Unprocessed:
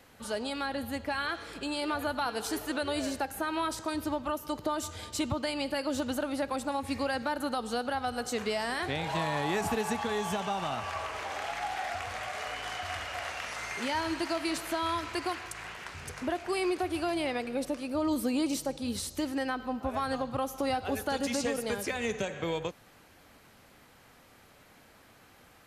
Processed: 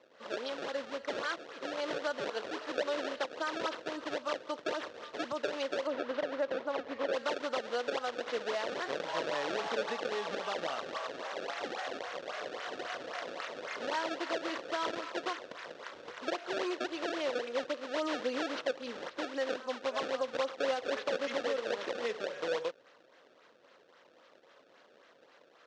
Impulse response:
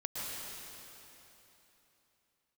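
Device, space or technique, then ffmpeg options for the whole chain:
circuit-bent sampling toy: -filter_complex "[0:a]acrusher=samples=25:mix=1:aa=0.000001:lfo=1:lforange=40:lforate=3.7,highpass=500,equalizer=frequency=520:width_type=q:width=4:gain=6,equalizer=frequency=800:width_type=q:width=4:gain=-7,equalizer=frequency=2300:width_type=q:width=4:gain=-4,equalizer=frequency=4800:width_type=q:width=4:gain=-3,lowpass=frequency=5300:width=0.5412,lowpass=frequency=5300:width=1.3066,asettb=1/sr,asplit=3[link_01][link_02][link_03];[link_01]atrim=end=5.874[link_04];[link_02]atrim=start=5.87:end=7.13,asetpts=PTS-STARTPTS,afade=type=in:duration=0.004:curve=qsin,afade=type=out:start_time=1.256:duration=0.004:curve=qsin,aemphasis=mode=reproduction:type=75fm[link_05];[link_03]atrim=start=7.126[link_06];[link_04][link_05]acrossfade=duration=0.004:curve1=hsin:curve2=qsin[link_07];[link_07][link_06]acrossfade=duration=0.004:curve1=qsin:curve2=hsin"

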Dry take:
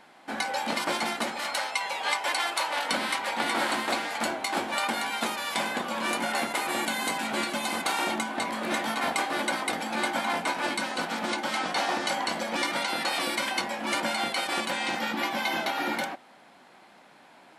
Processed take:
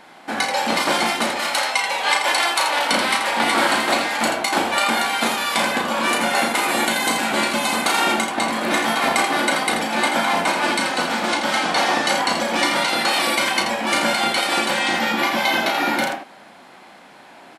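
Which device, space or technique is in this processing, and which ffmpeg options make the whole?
slapback doubling: -filter_complex "[0:a]asplit=3[link_01][link_02][link_03];[link_02]adelay=35,volume=-6dB[link_04];[link_03]adelay=83,volume=-7dB[link_05];[link_01][link_04][link_05]amix=inputs=3:normalize=0,volume=8dB"

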